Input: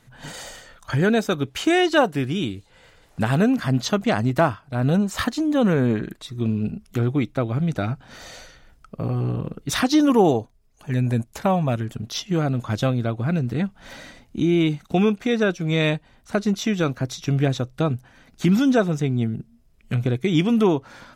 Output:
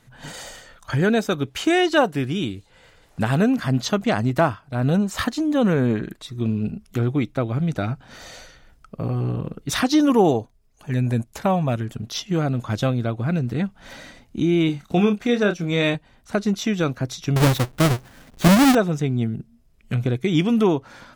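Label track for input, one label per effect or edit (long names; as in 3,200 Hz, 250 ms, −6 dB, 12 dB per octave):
14.660000	15.950000	double-tracking delay 29 ms −8 dB
17.360000	18.750000	each half-wave held at its own peak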